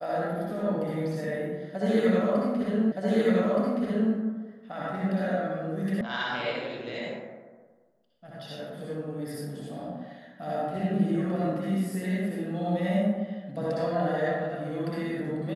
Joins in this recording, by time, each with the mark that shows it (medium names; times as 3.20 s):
2.92 s: repeat of the last 1.22 s
6.01 s: sound stops dead